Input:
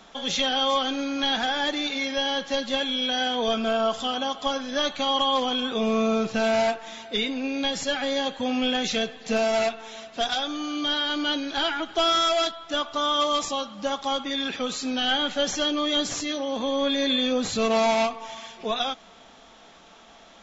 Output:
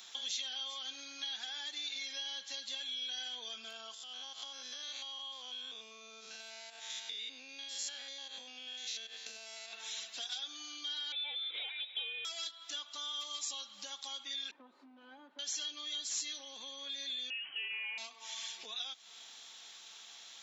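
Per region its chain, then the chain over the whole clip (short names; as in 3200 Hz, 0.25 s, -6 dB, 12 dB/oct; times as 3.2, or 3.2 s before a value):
3.94–9.73 stepped spectrum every 0.1 s + HPF 250 Hz + compressor 12:1, threshold -36 dBFS
11.12–12.25 bell 860 Hz -13 dB 0.27 oct + inverted band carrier 3800 Hz
14.51–15.39 minimum comb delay 3.3 ms + Chebyshev band-pass 260–1000 Hz + tilt -2.5 dB/oct
17.3–17.98 high shelf 2400 Hz +8.5 dB + inverted band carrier 3100 Hz
whole clip: thirty-one-band EQ 630 Hz -7 dB, 1250 Hz -4 dB, 4000 Hz +4 dB; compressor 6:1, threshold -38 dBFS; differentiator; gain +7 dB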